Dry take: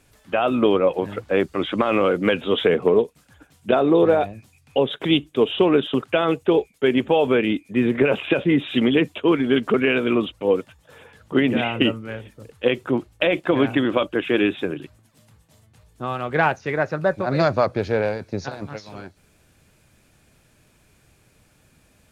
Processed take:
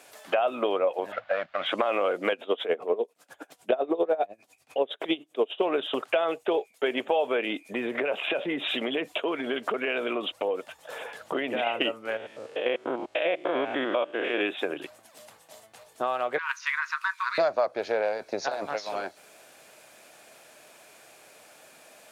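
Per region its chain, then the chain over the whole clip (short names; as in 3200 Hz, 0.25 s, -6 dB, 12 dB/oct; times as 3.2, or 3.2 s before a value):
1.12–1.66 CVSD 32 kbps + EQ curve 150 Hz 0 dB, 250 Hz -9 dB, 390 Hz -23 dB, 590 Hz +1 dB, 920 Hz -6 dB, 1500 Hz +3 dB, 2500 Hz -2 dB, 3700 Hz -8 dB, 6000 Hz -24 dB, 9100 Hz -11 dB
2.32–5.62 bell 320 Hz +5.5 dB 1.9 oct + dB-linear tremolo 10 Hz, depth 20 dB
7.59–11.67 low shelf 150 Hz +5.5 dB + compressor 2:1, threshold -27 dBFS
12.17–14.41 stepped spectrum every 0.1 s + air absorption 69 m
16.38–17.38 brick-wall FIR high-pass 930 Hz + negative-ratio compressor -28 dBFS
whole clip: HPF 490 Hz 12 dB/oct; bell 660 Hz +7.5 dB 0.59 oct; compressor 3:1, threshold -36 dBFS; gain +8 dB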